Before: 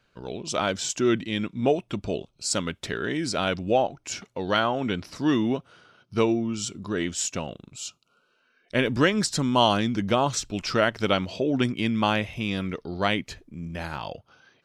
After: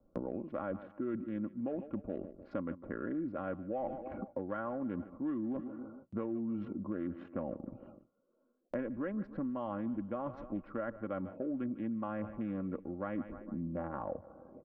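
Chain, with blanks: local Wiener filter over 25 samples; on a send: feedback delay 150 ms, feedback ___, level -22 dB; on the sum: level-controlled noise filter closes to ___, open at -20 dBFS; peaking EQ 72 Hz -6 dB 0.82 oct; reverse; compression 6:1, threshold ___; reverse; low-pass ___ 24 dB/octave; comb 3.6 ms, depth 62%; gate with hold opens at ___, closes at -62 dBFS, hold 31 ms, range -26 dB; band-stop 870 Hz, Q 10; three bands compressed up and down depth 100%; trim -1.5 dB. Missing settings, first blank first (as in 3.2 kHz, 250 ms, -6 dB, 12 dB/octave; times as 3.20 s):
47%, 810 Hz, -35 dBFS, 1.5 kHz, -60 dBFS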